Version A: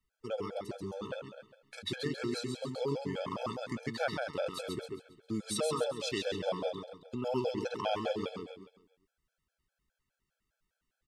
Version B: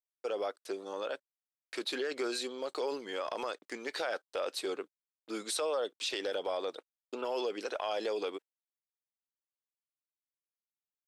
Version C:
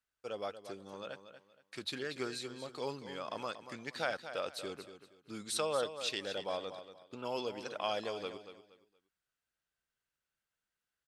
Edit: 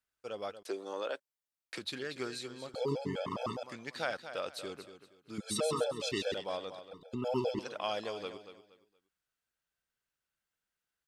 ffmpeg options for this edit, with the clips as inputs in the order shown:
-filter_complex "[0:a]asplit=3[s0][s1][s2];[2:a]asplit=5[s3][s4][s5][s6][s7];[s3]atrim=end=0.632[s8];[1:a]atrim=start=0.628:end=1.782[s9];[s4]atrim=start=1.778:end=2.742[s10];[s0]atrim=start=2.738:end=3.632[s11];[s5]atrim=start=3.628:end=5.382[s12];[s1]atrim=start=5.378:end=6.342[s13];[s6]atrim=start=6.338:end=6.912[s14];[s2]atrim=start=6.908:end=7.592[s15];[s7]atrim=start=7.588[s16];[s8][s9]acrossfade=d=0.004:c1=hsin:c2=hsin[s17];[s17][s10]acrossfade=d=0.004:c1=hsin:c2=hsin[s18];[s18][s11]acrossfade=d=0.004:c1=hsin:c2=hsin[s19];[s19][s12]acrossfade=d=0.004:c1=hsin:c2=hsin[s20];[s20][s13]acrossfade=d=0.004:c1=hsin:c2=hsin[s21];[s21][s14]acrossfade=d=0.004:c1=hsin:c2=hsin[s22];[s22][s15]acrossfade=d=0.004:c1=hsin:c2=hsin[s23];[s23][s16]acrossfade=d=0.004:c1=hsin:c2=hsin"

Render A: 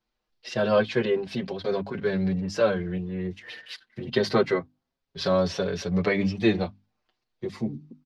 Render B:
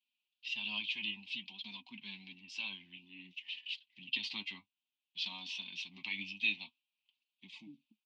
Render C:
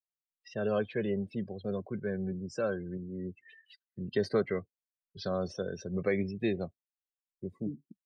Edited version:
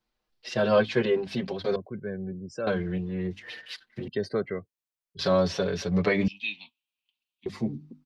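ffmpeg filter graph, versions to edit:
-filter_complex "[2:a]asplit=2[s0][s1];[0:a]asplit=4[s2][s3][s4][s5];[s2]atrim=end=1.762[s6];[s0]atrim=start=1.758:end=2.672[s7];[s3]atrim=start=2.668:end=4.082[s8];[s1]atrim=start=4.078:end=5.192[s9];[s4]atrim=start=5.188:end=6.282[s10];[1:a]atrim=start=6.278:end=7.462[s11];[s5]atrim=start=7.458[s12];[s6][s7]acrossfade=d=0.004:c1=hsin:c2=hsin[s13];[s13][s8]acrossfade=d=0.004:c1=hsin:c2=hsin[s14];[s14][s9]acrossfade=d=0.004:c1=hsin:c2=hsin[s15];[s15][s10]acrossfade=d=0.004:c1=hsin:c2=hsin[s16];[s16][s11]acrossfade=d=0.004:c1=hsin:c2=hsin[s17];[s17][s12]acrossfade=d=0.004:c1=hsin:c2=hsin"

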